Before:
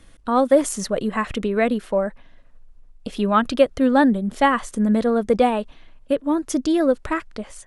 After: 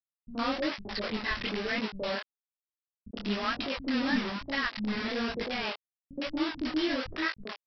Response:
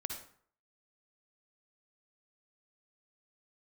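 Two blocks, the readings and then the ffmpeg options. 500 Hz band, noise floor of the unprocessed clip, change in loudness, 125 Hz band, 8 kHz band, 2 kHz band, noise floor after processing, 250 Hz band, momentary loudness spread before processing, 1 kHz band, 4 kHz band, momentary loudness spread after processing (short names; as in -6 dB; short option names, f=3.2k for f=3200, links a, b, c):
-16.0 dB, -49 dBFS, -11.5 dB, n/a, under -20 dB, -4.0 dB, under -85 dBFS, -12.0 dB, 10 LU, -14.0 dB, +1.0 dB, 8 LU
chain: -filter_complex "[0:a]equalizer=f=125:t=o:w=1:g=-10,equalizer=f=500:t=o:w=1:g=-5,equalizer=f=1k:t=o:w=1:g=-8,equalizer=f=2k:t=o:w=1:g=8,alimiter=limit=-18dB:level=0:latency=1:release=137,aresample=11025,acrusher=bits=4:mix=0:aa=0.000001,aresample=44100,acrossover=split=180|570[a][b][c];[b]adelay=70[d];[c]adelay=110[e];[a][d][e]amix=inputs=3:normalize=0,flanger=delay=18.5:depth=7.6:speed=1.1"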